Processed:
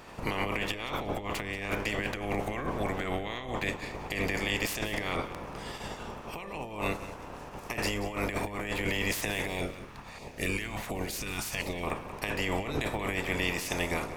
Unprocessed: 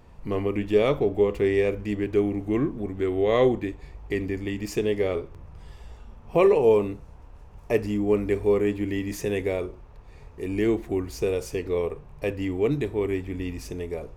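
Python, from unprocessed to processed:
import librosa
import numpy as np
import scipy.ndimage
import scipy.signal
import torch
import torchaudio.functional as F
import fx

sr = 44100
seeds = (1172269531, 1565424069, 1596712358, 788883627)

y = fx.spec_clip(x, sr, under_db=25)
y = fx.over_compress(y, sr, threshold_db=-30.0, ratio=-1.0)
y = fx.filter_lfo_notch(y, sr, shape='saw_down', hz=1.4, low_hz=300.0, high_hz=1700.0, q=0.91, at=(9.47, 11.83))
y = fx.echo_feedback(y, sr, ms=183, feedback_pct=29, wet_db=-14.5)
y = F.gain(torch.from_numpy(y), -3.0).numpy()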